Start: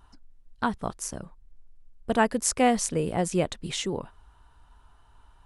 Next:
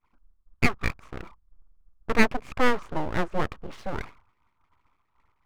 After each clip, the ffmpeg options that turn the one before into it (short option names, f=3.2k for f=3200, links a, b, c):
-af "lowpass=f=1.2k:t=q:w=4.9,agate=range=-33dB:threshold=-41dB:ratio=3:detection=peak,aeval=exprs='abs(val(0))':c=same"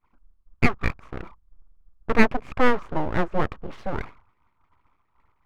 -af "highshelf=f=4k:g=-12,volume=3.5dB"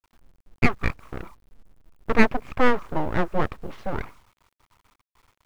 -af "acrusher=bits=9:mix=0:aa=0.000001"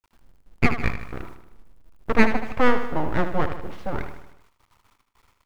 -af "aecho=1:1:77|154|231|308|385|462:0.335|0.181|0.0977|0.0527|0.0285|0.0154"